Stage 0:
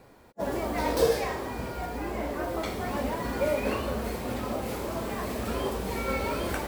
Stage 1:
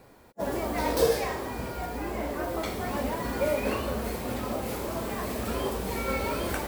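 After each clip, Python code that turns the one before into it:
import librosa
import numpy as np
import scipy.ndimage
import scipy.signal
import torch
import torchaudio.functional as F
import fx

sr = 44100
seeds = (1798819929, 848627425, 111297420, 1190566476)

y = fx.high_shelf(x, sr, hz=8800.0, db=5.0)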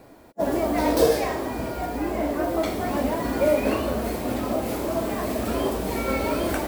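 y = fx.small_body(x, sr, hz=(300.0, 640.0), ring_ms=30, db=8)
y = y * 10.0 ** (2.5 / 20.0)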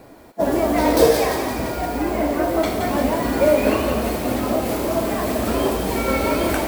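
y = fx.echo_thinned(x, sr, ms=172, feedback_pct=60, hz=1200.0, wet_db=-5.5)
y = y * 10.0 ** (4.5 / 20.0)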